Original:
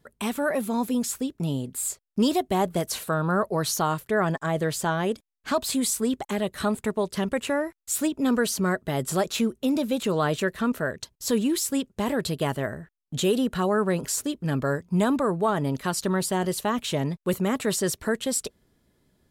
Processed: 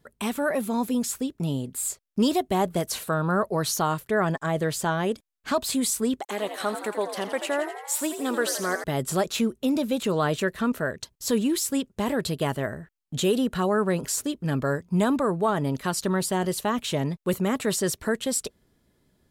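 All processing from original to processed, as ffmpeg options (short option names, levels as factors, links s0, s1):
-filter_complex "[0:a]asettb=1/sr,asplit=3[s0][s1][s2];[s0]atrim=end=6.204[s3];[s1]atrim=start=6.2:end=8.84,asetpts=PTS-STARTPTS,afade=t=in:d=0.004:c=qsin,afade=t=out:st=2.636:d=0.004:c=qsin,highpass=360,asplit=9[s4][s5][s6][s7][s8][s9][s10][s11][s12];[s5]adelay=84,afreqshift=69,volume=0.335[s13];[s6]adelay=168,afreqshift=138,volume=0.207[s14];[s7]adelay=252,afreqshift=207,volume=0.129[s15];[s8]adelay=336,afreqshift=276,volume=0.0794[s16];[s9]adelay=420,afreqshift=345,volume=0.0495[s17];[s10]adelay=504,afreqshift=414,volume=0.0305[s18];[s11]adelay=588,afreqshift=483,volume=0.0191[s19];[s12]adelay=672,afreqshift=552,volume=0.0117[s20];[s4][s13][s14][s15][s16][s17][s18][s19][s20]amix=inputs=9:normalize=0,atrim=end_sample=116424[s21];[s2]atrim=start=8.836[s22];[s3][s21]acrossfade=d=0.004:c1=hsin:c2=qsin[s23];[s23][s22]acrossfade=d=0.004:c1=qsin:c2=hsin"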